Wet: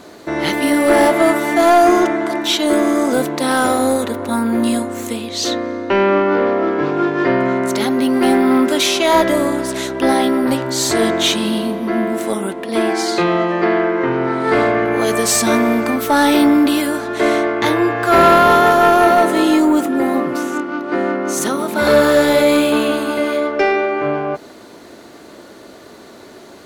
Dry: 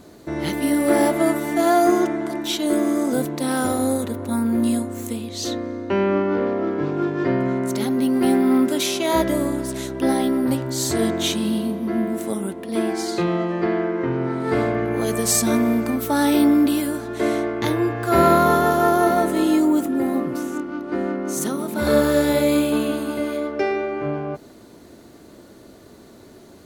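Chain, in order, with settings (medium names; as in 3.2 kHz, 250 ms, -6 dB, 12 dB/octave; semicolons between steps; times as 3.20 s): overdrive pedal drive 16 dB, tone 4 kHz, clips at -2.5 dBFS; trim +1.5 dB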